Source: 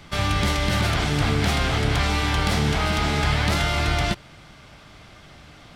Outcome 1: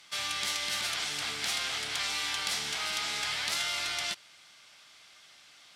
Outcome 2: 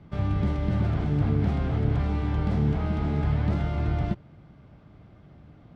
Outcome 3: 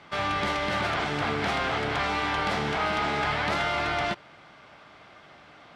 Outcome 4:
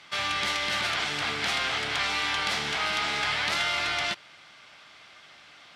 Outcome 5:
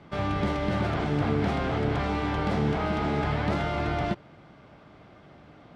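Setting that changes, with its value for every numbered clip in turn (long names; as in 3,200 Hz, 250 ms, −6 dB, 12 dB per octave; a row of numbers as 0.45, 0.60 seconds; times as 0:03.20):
resonant band-pass, frequency: 7,700, 140, 980, 2,800, 370 Hertz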